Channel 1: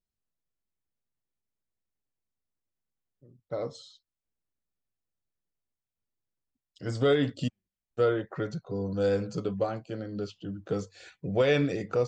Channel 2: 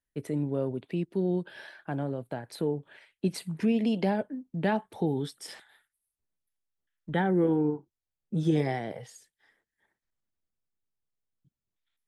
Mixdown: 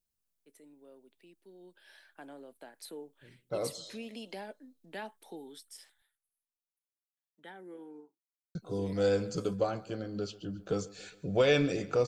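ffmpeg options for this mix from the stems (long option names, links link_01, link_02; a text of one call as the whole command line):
ffmpeg -i stem1.wav -i stem2.wav -filter_complex "[0:a]bandreject=frequency=1900:width=11,asubboost=boost=3.5:cutoff=52,volume=-1dB,asplit=3[link_01][link_02][link_03];[link_01]atrim=end=6.02,asetpts=PTS-STARTPTS,afade=type=out:start_time=6.016:duration=0.004:curve=hsin[link_04];[link_02]atrim=start=6.02:end=8.55,asetpts=PTS-STARTPTS,volume=0[link_05];[link_03]atrim=start=8.55,asetpts=PTS-STARTPTS,afade=type=in:duration=0.004:curve=hsin[link_06];[link_04][link_05][link_06]concat=n=3:v=0:a=1,asplit=2[link_07][link_08];[link_08]volume=-20dB[link_09];[1:a]highpass=frequency=240:width=0.5412,highpass=frequency=240:width=1.3066,tiltshelf=frequency=1400:gain=-4,adelay=300,volume=-11.5dB,afade=type=in:start_time=1.59:duration=0.57:silence=0.298538,afade=type=out:start_time=5.26:duration=0.61:silence=0.421697[link_10];[link_09]aecho=0:1:137|274|411|548|685|822|959|1096:1|0.55|0.303|0.166|0.0915|0.0503|0.0277|0.0152[link_11];[link_07][link_10][link_11]amix=inputs=3:normalize=0,highshelf=frequency=5600:gain=10.5" out.wav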